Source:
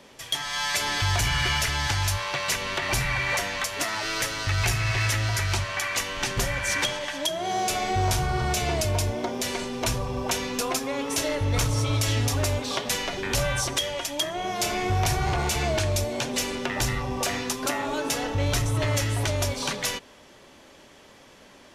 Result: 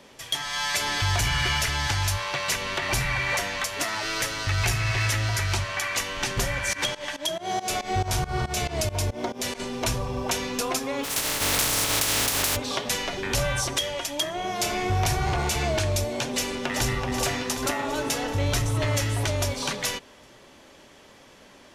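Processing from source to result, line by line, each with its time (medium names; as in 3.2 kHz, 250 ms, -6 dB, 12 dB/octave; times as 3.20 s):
6.73–9.60 s: volume shaper 139 bpm, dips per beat 2, -20 dB, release 160 ms
11.03–12.55 s: spectral contrast reduction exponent 0.22
16.25–16.96 s: echo throw 380 ms, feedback 65%, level -6.5 dB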